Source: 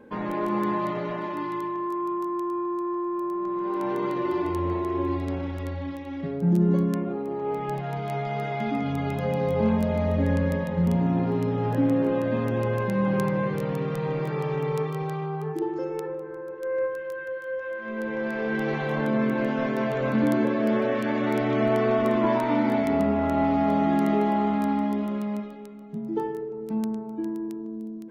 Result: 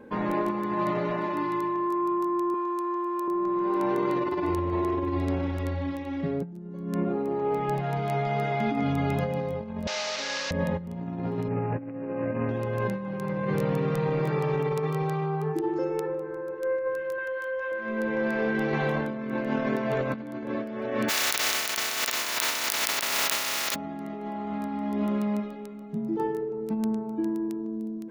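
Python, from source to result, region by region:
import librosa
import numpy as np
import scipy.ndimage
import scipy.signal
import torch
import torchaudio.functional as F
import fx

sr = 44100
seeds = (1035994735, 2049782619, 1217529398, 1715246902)

y = fx.chain(x, sr, fx.highpass(hz=490.0, slope=6),
    fx.high_shelf(hz=2500.0, db=10.0), at=(2.54, 3.28))
y = fx.chain(y, sr, fx.delta_mod(bps=32000, step_db=-27.5),
    fx.highpass(hz=1000.0, slope=12),
    fx.high_shelf(hz=2900.0, db=7.5), at=(9.87, 10.51))
y = fx.chain(y, sr, fx.highpass(hz=41.0, slope=12),
    fx.resample_bad(factor=8, down='none', up='filtered'), at=(11.48, 12.49))
y = fx.chain(y, sr, fx.peak_eq(hz=160.0, db=-11.0, octaves=2.3),
    fx.small_body(hz=(1000.0, 3100.0), ring_ms=85, db=11),
    fx.env_flatten(amount_pct=50), at=(17.18, 17.72))
y = fx.spec_flatten(y, sr, power=0.2, at=(21.08, 23.74), fade=0.02)
y = fx.highpass(y, sr, hz=1200.0, slope=6, at=(21.08, 23.74), fade=0.02)
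y = fx.over_compress(y, sr, threshold_db=-27.0, ratio=-0.5)
y = fx.notch(y, sr, hz=3200.0, q=25.0)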